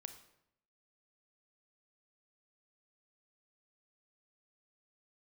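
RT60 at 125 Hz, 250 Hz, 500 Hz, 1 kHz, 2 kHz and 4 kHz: 0.90, 0.85, 0.80, 0.75, 0.70, 0.60 s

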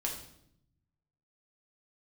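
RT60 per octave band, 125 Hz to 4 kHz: 1.6, 1.1, 0.80, 0.65, 0.60, 0.60 s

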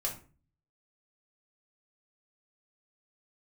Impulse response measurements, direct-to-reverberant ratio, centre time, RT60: -1.5 dB, 19 ms, 0.40 s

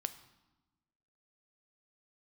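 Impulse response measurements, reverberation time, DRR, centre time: 1.1 s, 10.5 dB, 6 ms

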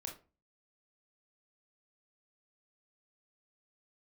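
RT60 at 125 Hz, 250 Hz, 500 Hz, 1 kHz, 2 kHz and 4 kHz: 0.45, 0.45, 0.35, 0.30, 0.25, 0.20 s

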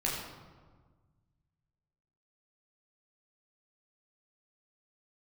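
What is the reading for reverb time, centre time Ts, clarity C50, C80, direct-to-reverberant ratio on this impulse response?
1.5 s, 68 ms, 2.0 dB, 3.5 dB, -5.0 dB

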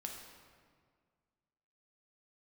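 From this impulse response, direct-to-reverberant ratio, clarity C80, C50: 0.5 dB, 5.0 dB, 3.5 dB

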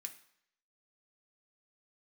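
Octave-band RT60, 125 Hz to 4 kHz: 0.60, 0.65, 0.70, 0.75, 0.75, 0.70 s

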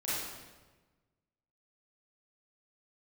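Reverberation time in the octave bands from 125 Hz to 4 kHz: 1.7, 1.5, 1.3, 1.2, 1.1, 1.0 s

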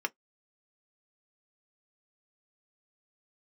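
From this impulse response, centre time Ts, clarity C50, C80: 3 ms, 35.5 dB, 54.5 dB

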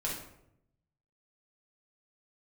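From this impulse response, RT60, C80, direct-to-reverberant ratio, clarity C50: 0.75 s, 7.0 dB, -4.5 dB, 2.5 dB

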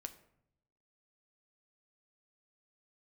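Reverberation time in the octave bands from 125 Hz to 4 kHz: 1.1, 1.0, 0.80, 0.70, 0.60, 0.40 s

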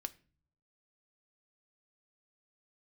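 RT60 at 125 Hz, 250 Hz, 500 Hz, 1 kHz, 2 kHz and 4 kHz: 0.95, 0.75, 0.45, 0.35, 0.40, 0.30 s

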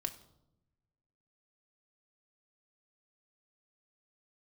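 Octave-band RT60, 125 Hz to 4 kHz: 1.6, 1.3, 0.95, 0.75, 0.50, 0.55 s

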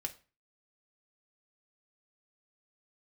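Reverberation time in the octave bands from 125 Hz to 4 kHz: 0.40, 0.40, 0.35, 0.35, 0.35, 0.30 s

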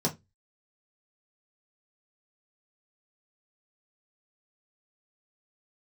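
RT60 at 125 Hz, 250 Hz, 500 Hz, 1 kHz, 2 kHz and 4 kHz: 0.35, 0.25, 0.20, 0.15, 0.15, 0.15 s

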